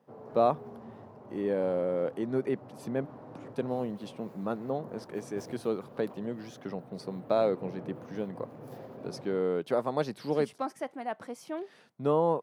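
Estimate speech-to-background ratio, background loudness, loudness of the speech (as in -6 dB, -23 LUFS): 15.0 dB, -48.0 LUFS, -33.0 LUFS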